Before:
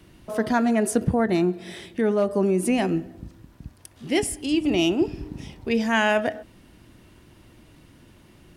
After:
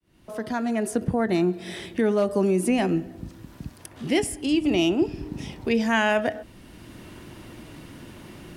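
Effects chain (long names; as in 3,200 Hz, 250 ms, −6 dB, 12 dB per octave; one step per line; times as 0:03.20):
fade in at the beginning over 1.52 s
multiband upward and downward compressor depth 40%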